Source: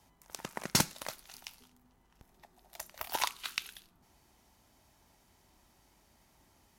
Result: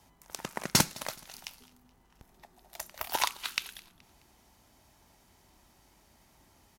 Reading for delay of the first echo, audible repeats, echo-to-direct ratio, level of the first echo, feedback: 212 ms, 2, −22.5 dB, −23.5 dB, 42%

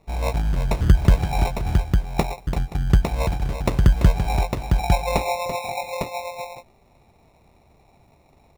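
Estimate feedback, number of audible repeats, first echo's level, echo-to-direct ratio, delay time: repeats not evenly spaced, 3, −9.0 dB, −3.0 dB, 337 ms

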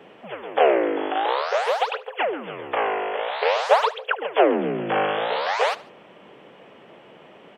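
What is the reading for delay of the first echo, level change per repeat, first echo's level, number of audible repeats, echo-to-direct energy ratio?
74 ms, −6.0 dB, −20.0 dB, 2, −19.0 dB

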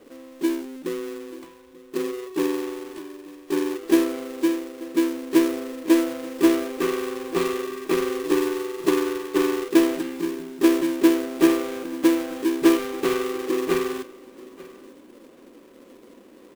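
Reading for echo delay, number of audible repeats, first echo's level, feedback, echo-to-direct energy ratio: 887 ms, 1, −20.5 dB, repeats not evenly spaced, −20.5 dB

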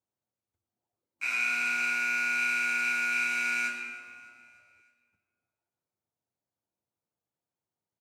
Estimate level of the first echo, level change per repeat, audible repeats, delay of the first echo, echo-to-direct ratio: −20.5 dB, −5.5 dB, 3, 302 ms, −19.0 dB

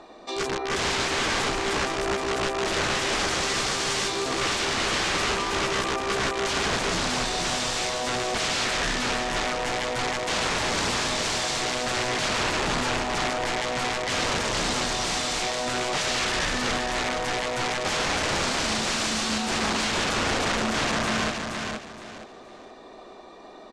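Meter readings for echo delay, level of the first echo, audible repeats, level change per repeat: 470 ms, −5.0 dB, 3, −11.5 dB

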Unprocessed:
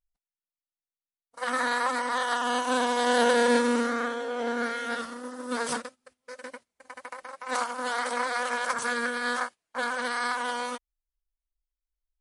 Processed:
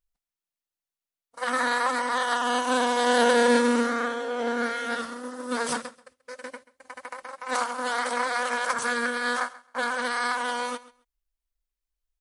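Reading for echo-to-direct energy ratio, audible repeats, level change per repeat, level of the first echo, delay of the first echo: −19.0 dB, 2, −15.5 dB, −19.0 dB, 134 ms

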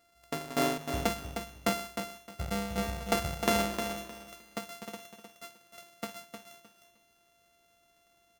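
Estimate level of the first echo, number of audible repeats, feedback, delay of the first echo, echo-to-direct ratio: −7.5 dB, 3, 23%, 308 ms, −7.5 dB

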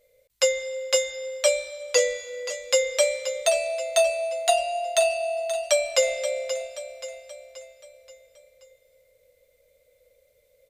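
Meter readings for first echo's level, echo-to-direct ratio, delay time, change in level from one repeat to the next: −10.5 dB, −9.5 dB, 529 ms, −6.0 dB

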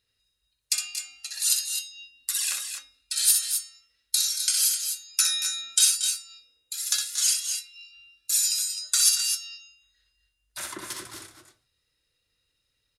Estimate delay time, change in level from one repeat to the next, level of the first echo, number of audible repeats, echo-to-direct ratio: 62 ms, repeats not evenly spaced, −5.5 dB, 2, −3.0 dB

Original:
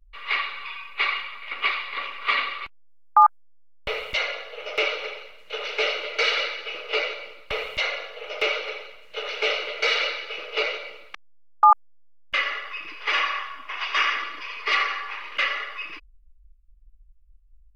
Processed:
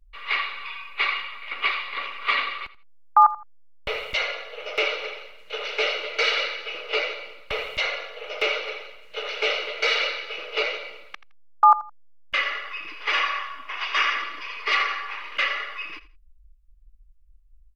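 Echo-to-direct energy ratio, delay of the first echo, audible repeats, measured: −17.0 dB, 83 ms, 2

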